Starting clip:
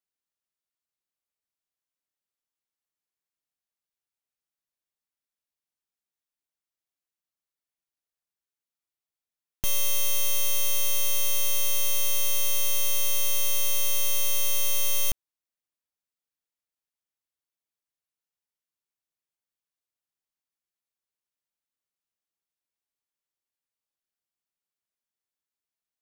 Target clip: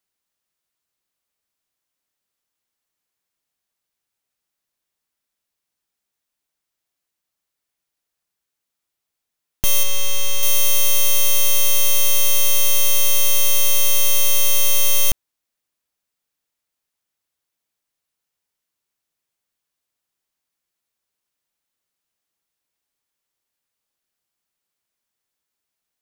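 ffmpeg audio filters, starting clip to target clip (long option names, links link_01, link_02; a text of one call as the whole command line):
ffmpeg -i in.wav -filter_complex "[0:a]aeval=exprs='val(0)+0.5*0.0168*sgn(val(0))':channel_layout=same,asettb=1/sr,asplit=3[link_01][link_02][link_03];[link_01]atrim=end=9.834[link_04];[link_02]atrim=start=9.83:end=10.43,asetpts=PTS-STARTPTS,afade=type=in:duration=0.004:curve=qsin,afade=type=out:start_time=0.596:duration=0.004:curve=qsin,highshelf=frequency=6600:gain=-10[link_05];[link_03]atrim=start=10.426[link_06];[link_04][link_05]acrossfade=duration=0.004:curve1=hsin:curve2=qsin[link_07];[link_07][link_06]acrossfade=duration=0.004:curve1=qsin:curve2=hsin,acrusher=bits=5:mix=0:aa=0.5,volume=8.5dB" out.wav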